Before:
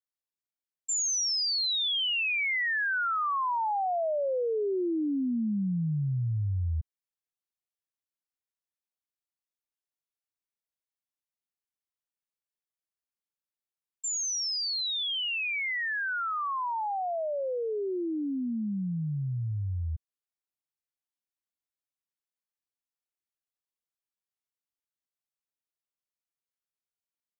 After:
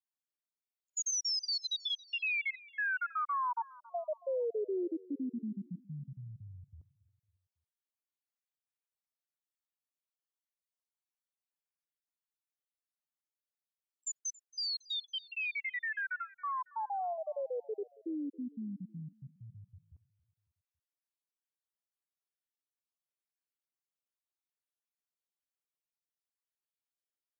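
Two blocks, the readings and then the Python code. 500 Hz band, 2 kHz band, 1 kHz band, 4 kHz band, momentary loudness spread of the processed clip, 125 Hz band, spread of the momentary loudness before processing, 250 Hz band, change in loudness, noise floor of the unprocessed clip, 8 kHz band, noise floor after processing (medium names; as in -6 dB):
-7.0 dB, -7.0 dB, -7.5 dB, -8.5 dB, 15 LU, -17.5 dB, 7 LU, -9.5 dB, -7.5 dB, under -85 dBFS, no reading, under -85 dBFS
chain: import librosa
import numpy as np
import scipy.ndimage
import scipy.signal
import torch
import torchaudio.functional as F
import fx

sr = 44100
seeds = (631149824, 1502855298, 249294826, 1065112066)

p1 = fx.spec_dropout(x, sr, seeds[0], share_pct=44)
p2 = scipy.signal.sosfilt(scipy.signal.butter(2, 240.0, 'highpass', fs=sr, output='sos'), p1)
p3 = p2 + fx.echo_feedback(p2, sr, ms=276, feedback_pct=50, wet_db=-22, dry=0)
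y = p3 * 10.0 ** (-4.0 / 20.0)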